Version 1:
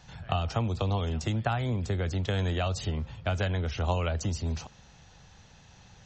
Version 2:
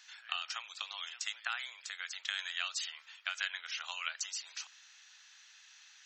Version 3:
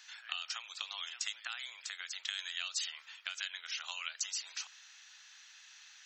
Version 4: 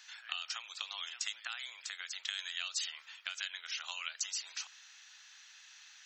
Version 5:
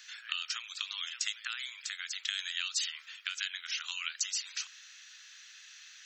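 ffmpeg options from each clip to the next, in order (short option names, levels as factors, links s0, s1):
-af "highpass=f=1500:w=0.5412,highpass=f=1500:w=1.3066,volume=1.26"
-filter_complex "[0:a]acrossover=split=350|3000[s0][s1][s2];[s1]acompressor=threshold=0.00501:ratio=5[s3];[s0][s3][s2]amix=inputs=3:normalize=0,volume=1.26"
-af "lowshelf=f=220:g=4"
-af "highpass=f=1300:w=0.5412,highpass=f=1300:w=1.3066,volume=1.58"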